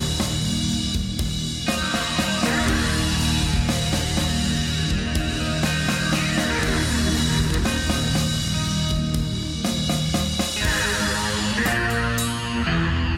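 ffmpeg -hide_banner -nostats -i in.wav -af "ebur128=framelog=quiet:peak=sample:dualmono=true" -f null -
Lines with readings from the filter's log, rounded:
Integrated loudness:
  I:         -19.0 LUFS
  Threshold: -29.0 LUFS
Loudness range:
  LRA:         1.0 LU
  Threshold: -38.8 LUFS
  LRA low:   -19.4 LUFS
  LRA high:  -18.3 LUFS
Sample peak:
  Peak:       -9.3 dBFS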